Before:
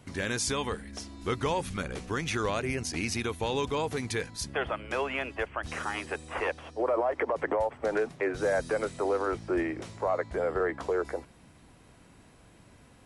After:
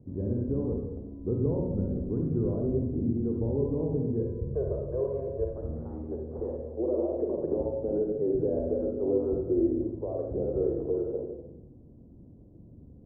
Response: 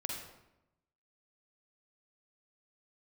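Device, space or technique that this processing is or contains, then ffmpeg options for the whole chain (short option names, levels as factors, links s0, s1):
next room: -filter_complex "[0:a]equalizer=f=1400:w=1.5:g=2.5,asettb=1/sr,asplit=3[s0][s1][s2];[s0]atrim=end=4.194[s3];[s1]atrim=start=4.19:end=5.48,asetpts=PTS-STARTPTS,afade=t=in:d=0.004:c=qsin,afade=t=out:st=1.286:d=0.004:c=qsin,aecho=1:1:1.9:0.85,atrim=end_sample=56889[s4];[s2]atrim=start=5.476[s5];[s3][s4]acrossfade=d=0.004:c1=hsin:c2=qsin[s6];[s6][s5]acrossfade=d=0.004:c1=qsin:c2=hsin,lowpass=f=440:w=0.5412,lowpass=f=440:w=1.3066[s7];[1:a]atrim=start_sample=2205[s8];[s7][s8]afir=irnorm=-1:irlink=0,volume=1.68"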